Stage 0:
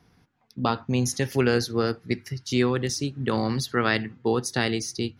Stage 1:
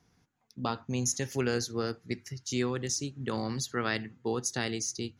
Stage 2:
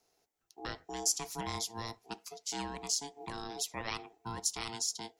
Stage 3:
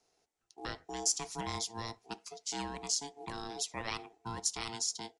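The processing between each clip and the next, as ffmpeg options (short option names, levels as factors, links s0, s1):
-af "equalizer=f=6800:w=2.7:g=12.5,volume=0.398"
-af "crystalizer=i=3:c=0,aeval=exprs='val(0)*sin(2*PI*670*n/s)':c=same,afreqshift=-100,volume=0.447"
-af "acrusher=bits=7:mode=log:mix=0:aa=0.000001,aresample=22050,aresample=44100"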